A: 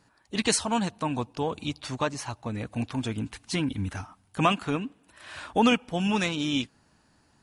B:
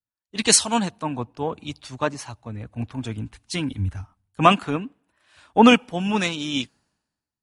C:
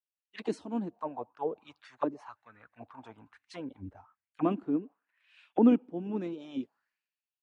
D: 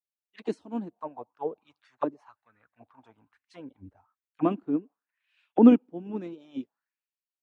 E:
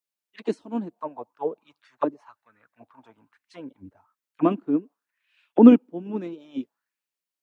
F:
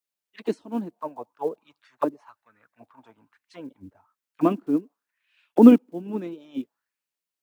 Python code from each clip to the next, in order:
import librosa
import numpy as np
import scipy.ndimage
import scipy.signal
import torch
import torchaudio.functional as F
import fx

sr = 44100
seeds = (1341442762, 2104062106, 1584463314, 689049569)

y1 = fx.band_widen(x, sr, depth_pct=100)
y1 = y1 * librosa.db_to_amplitude(2.0)
y2 = fx.auto_wah(y1, sr, base_hz=310.0, top_hz=2800.0, q=3.9, full_db=-20.0, direction='down')
y3 = fx.upward_expand(y2, sr, threshold_db=-49.0, expansion=1.5)
y3 = y3 * librosa.db_to_amplitude(7.0)
y4 = scipy.signal.sosfilt(scipy.signal.butter(2, 130.0, 'highpass', fs=sr, output='sos'), y3)
y4 = fx.notch(y4, sr, hz=770.0, q=12.0)
y4 = y4 * librosa.db_to_amplitude(4.5)
y5 = fx.block_float(y4, sr, bits=7)